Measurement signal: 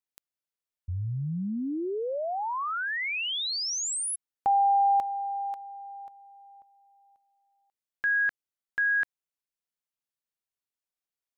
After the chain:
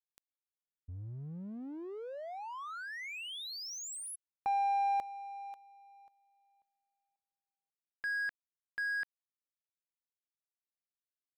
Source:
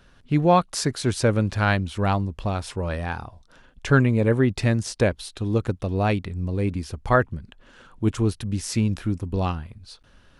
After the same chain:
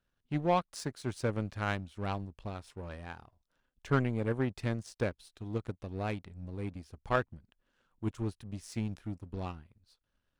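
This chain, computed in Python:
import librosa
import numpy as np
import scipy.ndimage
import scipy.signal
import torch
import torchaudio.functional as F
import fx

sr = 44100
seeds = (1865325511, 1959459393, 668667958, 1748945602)

y = fx.power_curve(x, sr, exponent=1.4)
y = fx.doppler_dist(y, sr, depth_ms=0.14)
y = F.gain(torch.from_numpy(y), -8.0).numpy()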